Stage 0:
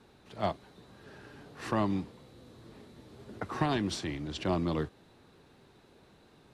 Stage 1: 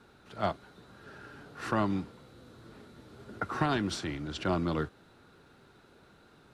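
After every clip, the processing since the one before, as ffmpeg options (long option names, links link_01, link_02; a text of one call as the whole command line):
ffmpeg -i in.wav -af "equalizer=frequency=1400:width_type=o:width=0.23:gain=11.5" out.wav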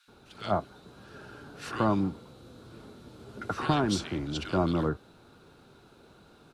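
ffmpeg -i in.wav -filter_complex "[0:a]equalizer=frequency=1900:width_type=o:width=0.22:gain=-6.5,acrossover=split=1700[link_01][link_02];[link_01]adelay=80[link_03];[link_03][link_02]amix=inputs=2:normalize=0,volume=3.5dB" out.wav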